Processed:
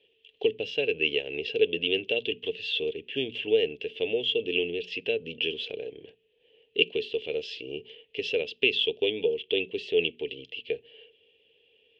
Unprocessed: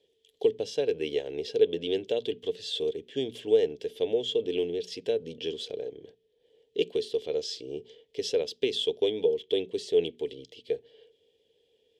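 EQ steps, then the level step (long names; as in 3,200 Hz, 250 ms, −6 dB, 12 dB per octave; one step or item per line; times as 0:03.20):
dynamic equaliser 1,100 Hz, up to −6 dB, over −43 dBFS, Q 0.87
low-pass with resonance 2,700 Hz, resonance Q 9.8
0.0 dB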